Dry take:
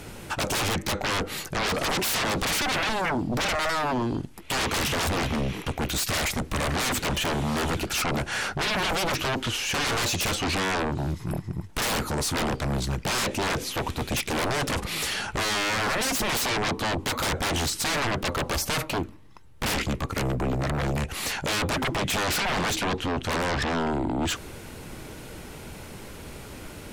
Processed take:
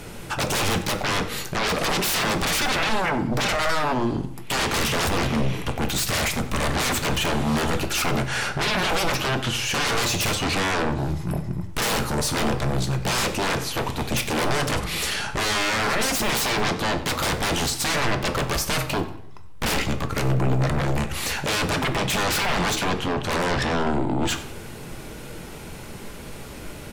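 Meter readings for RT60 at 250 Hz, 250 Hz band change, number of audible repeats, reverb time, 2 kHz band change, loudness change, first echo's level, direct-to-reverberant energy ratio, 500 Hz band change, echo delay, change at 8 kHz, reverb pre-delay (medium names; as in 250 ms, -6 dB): 0.80 s, +3.0 dB, 2, 0.70 s, +3.0 dB, +3.0 dB, -18.0 dB, 6.5 dB, +3.0 dB, 93 ms, +2.5 dB, 3 ms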